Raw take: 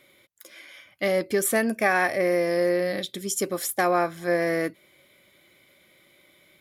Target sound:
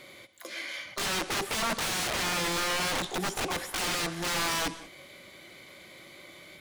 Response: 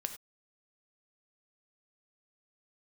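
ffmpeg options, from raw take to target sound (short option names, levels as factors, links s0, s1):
-filter_complex "[0:a]acrossover=split=2600[s0][s1];[s1]acompressor=threshold=0.00631:ratio=4:attack=1:release=60[s2];[s0][s2]amix=inputs=2:normalize=0,asplit=2[s3][s4];[s4]asetrate=88200,aresample=44100,atempo=0.5,volume=0.355[s5];[s3][s5]amix=inputs=2:normalize=0,acompressor=threshold=0.0158:ratio=2,aeval=exprs='(mod(44.7*val(0)+1,2)-1)/44.7':c=same,highshelf=f=8700:g=-6.5,asplit=2[s6][s7];[1:a]atrim=start_sample=2205,asetrate=22932,aresample=44100[s8];[s7][s8]afir=irnorm=-1:irlink=0,volume=0.501[s9];[s6][s9]amix=inputs=2:normalize=0,volume=1.68"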